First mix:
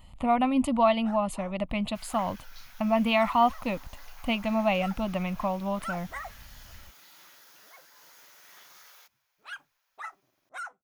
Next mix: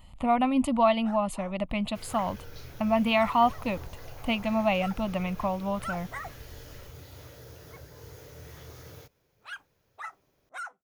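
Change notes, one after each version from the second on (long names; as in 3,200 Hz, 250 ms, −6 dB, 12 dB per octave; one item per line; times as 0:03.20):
second sound: remove high-pass filter 900 Hz 24 dB per octave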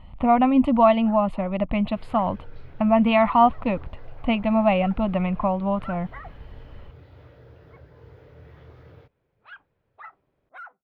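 speech +7.5 dB
master: add high-frequency loss of the air 440 metres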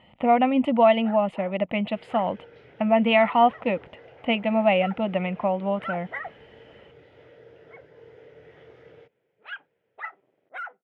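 first sound +7.0 dB
master: add loudspeaker in its box 220–9,600 Hz, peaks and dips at 270 Hz −3 dB, 460 Hz +6 dB, 1,100 Hz −9 dB, 2,000 Hz +5 dB, 3,000 Hz +5 dB, 4,300 Hz −7 dB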